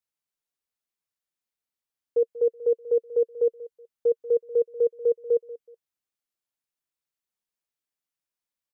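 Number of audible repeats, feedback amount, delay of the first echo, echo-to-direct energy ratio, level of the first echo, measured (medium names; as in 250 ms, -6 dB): 2, 27%, 187 ms, -17.0 dB, -17.5 dB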